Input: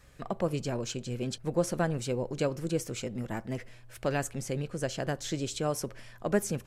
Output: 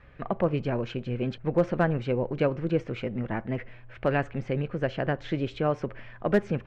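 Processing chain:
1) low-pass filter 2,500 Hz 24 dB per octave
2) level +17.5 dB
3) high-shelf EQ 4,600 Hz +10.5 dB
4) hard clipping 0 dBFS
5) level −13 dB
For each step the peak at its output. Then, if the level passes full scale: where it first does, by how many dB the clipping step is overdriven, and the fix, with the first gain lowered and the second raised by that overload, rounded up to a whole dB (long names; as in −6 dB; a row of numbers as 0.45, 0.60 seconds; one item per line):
−13.5, +4.0, +4.5, 0.0, −13.0 dBFS
step 2, 4.5 dB
step 2 +12.5 dB, step 5 −8 dB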